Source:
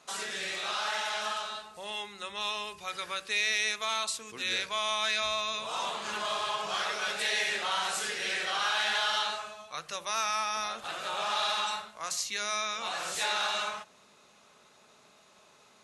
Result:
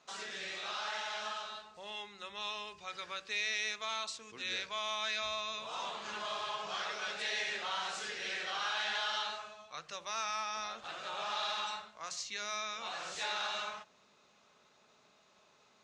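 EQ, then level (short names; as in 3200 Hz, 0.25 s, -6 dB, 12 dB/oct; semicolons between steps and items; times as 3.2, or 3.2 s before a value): LPF 6800 Hz 24 dB/oct; -6.5 dB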